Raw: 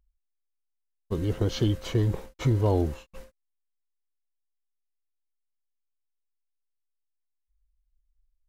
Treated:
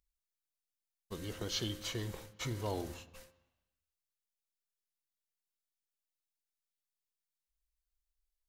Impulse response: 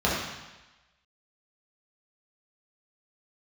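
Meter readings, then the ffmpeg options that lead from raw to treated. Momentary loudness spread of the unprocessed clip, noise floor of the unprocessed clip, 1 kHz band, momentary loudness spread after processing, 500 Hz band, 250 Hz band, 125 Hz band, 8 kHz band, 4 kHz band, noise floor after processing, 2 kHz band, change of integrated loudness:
8 LU, -79 dBFS, -9.0 dB, 14 LU, -13.0 dB, -14.0 dB, -17.0 dB, no reading, -1.0 dB, under -85 dBFS, -3.5 dB, -12.5 dB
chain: -filter_complex "[0:a]tiltshelf=f=1200:g=-8.5,asplit=2[s0][s1];[1:a]atrim=start_sample=2205[s2];[s1][s2]afir=irnorm=-1:irlink=0,volume=0.0422[s3];[s0][s3]amix=inputs=2:normalize=0,volume=0.422"

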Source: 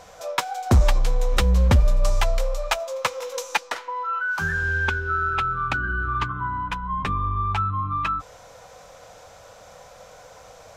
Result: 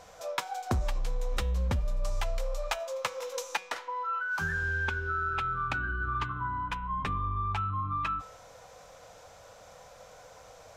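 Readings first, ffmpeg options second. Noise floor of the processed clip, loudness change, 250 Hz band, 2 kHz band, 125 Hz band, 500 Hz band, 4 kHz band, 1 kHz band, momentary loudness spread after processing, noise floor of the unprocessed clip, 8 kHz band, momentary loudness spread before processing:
-53 dBFS, -8.5 dB, -10.5 dB, -7.5 dB, -10.5 dB, -8.0 dB, -9.0 dB, -7.0 dB, 21 LU, -47 dBFS, -8.5 dB, 8 LU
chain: -af "acompressor=threshold=0.0891:ratio=6,bandreject=f=187.4:t=h:w=4,bandreject=f=374.8:t=h:w=4,bandreject=f=562.2:t=h:w=4,bandreject=f=749.6:t=h:w=4,bandreject=f=937:t=h:w=4,bandreject=f=1124.4:t=h:w=4,bandreject=f=1311.8:t=h:w=4,bandreject=f=1499.2:t=h:w=4,bandreject=f=1686.6:t=h:w=4,bandreject=f=1874:t=h:w=4,bandreject=f=2061.4:t=h:w=4,bandreject=f=2248.8:t=h:w=4,bandreject=f=2436.2:t=h:w=4,bandreject=f=2623.6:t=h:w=4,bandreject=f=2811:t=h:w=4,bandreject=f=2998.4:t=h:w=4,bandreject=f=3185.8:t=h:w=4,bandreject=f=3373.2:t=h:w=4,bandreject=f=3560.6:t=h:w=4,bandreject=f=3748:t=h:w=4,bandreject=f=3935.4:t=h:w=4,volume=0.531"

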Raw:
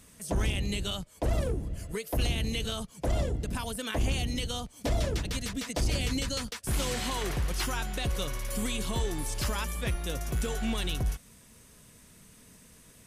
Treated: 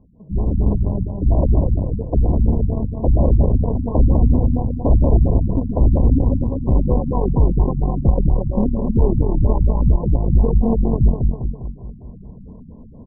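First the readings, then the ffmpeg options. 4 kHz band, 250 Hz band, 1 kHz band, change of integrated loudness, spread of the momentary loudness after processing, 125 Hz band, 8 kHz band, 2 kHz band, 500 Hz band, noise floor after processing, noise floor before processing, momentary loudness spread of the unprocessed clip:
under -40 dB, +15.5 dB, +7.5 dB, +13.5 dB, 6 LU, +16.5 dB, under -40 dB, under -40 dB, +12.0 dB, -39 dBFS, -56 dBFS, 4 LU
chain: -filter_complex "[0:a]acrossover=split=2300[s0][s1];[s0]acrusher=bits=3:mode=log:mix=0:aa=0.000001[s2];[s2][s1]amix=inputs=2:normalize=0,tiltshelf=f=1200:g=9.5,aecho=1:1:201|402|603|804|1005|1206|1407:0.631|0.328|0.171|0.0887|0.0461|0.024|0.0125,aeval=exprs='0.447*(cos(1*acos(clip(val(0)/0.447,-1,1)))-cos(1*PI/2))+0.0355*(cos(8*acos(clip(val(0)/0.447,-1,1)))-cos(8*PI/2))':c=same,afftfilt=real='re*(1-between(b*sr/4096,1100,8200))':imag='im*(1-between(b*sr/4096,1100,8200))':win_size=4096:overlap=0.75,dynaudnorm=f=240:g=5:m=3.55,afftfilt=real='re*lt(b*sr/1024,240*pow(4400/240,0.5+0.5*sin(2*PI*4.3*pts/sr)))':imag='im*lt(b*sr/1024,240*pow(4400/240,0.5+0.5*sin(2*PI*4.3*pts/sr)))':win_size=1024:overlap=0.75,volume=0.75"

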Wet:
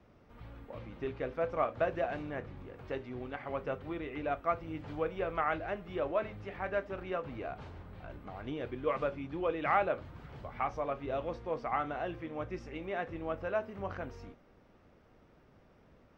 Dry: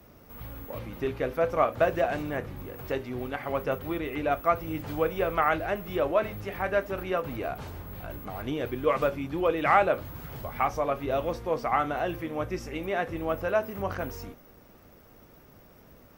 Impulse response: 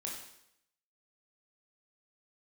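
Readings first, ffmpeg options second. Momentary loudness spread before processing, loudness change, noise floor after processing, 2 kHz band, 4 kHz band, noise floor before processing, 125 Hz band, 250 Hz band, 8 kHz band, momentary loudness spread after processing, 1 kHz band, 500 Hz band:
14 LU, -7.5 dB, -63 dBFS, -7.5 dB, -9.5 dB, -55 dBFS, -7.5 dB, -7.5 dB, no reading, 15 LU, -7.5 dB, -7.5 dB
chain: -af "lowpass=3900,volume=0.422"

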